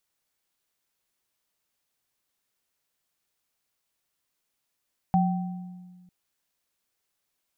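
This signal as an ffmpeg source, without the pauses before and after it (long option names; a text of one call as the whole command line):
ffmpeg -f lavfi -i "aevalsrc='0.119*pow(10,-3*t/1.69)*sin(2*PI*180*t)+0.0944*pow(10,-3*t/0.92)*sin(2*PI*771*t)':duration=0.95:sample_rate=44100" out.wav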